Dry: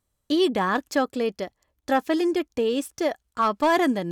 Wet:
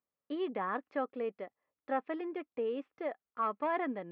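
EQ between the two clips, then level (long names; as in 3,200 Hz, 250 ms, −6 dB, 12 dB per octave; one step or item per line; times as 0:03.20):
loudspeaker in its box 320–2,100 Hz, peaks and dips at 340 Hz −7 dB, 630 Hz −4 dB, 910 Hz −5 dB, 1,600 Hz −7 dB
−7.5 dB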